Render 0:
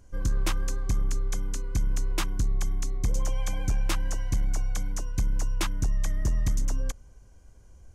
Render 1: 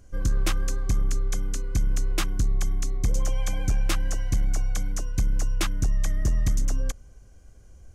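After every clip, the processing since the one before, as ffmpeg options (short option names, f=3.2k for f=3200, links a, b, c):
-af "bandreject=f=940:w=5.2,volume=2.5dB"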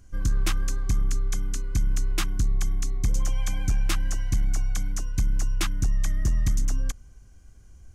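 -af "equalizer=f=530:t=o:w=0.82:g=-9"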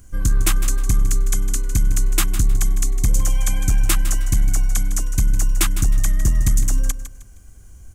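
-af "aexciter=amount=4:drive=2.3:freq=7.4k,aecho=1:1:156|312|468:0.251|0.0728|0.0211,volume=6dB"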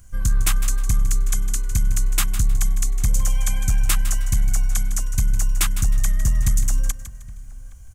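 -filter_complex "[0:a]equalizer=f=330:t=o:w=0.85:g=-12,asplit=2[a][b];[b]adelay=816.3,volume=-20dB,highshelf=f=4k:g=-18.4[c];[a][c]amix=inputs=2:normalize=0,volume=-1.5dB"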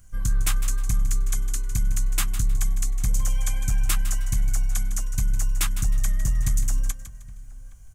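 -af "flanger=delay=6.3:depth=1.2:regen=-57:speed=1:shape=triangular"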